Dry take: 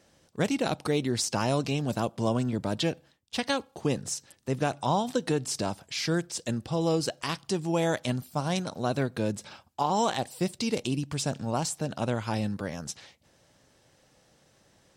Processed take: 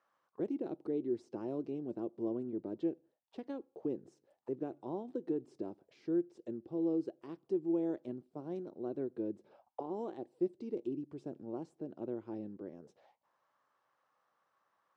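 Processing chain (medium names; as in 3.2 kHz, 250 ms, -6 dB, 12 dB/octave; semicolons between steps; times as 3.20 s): auto-wah 350–1200 Hz, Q 5.5, down, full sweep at -31.5 dBFS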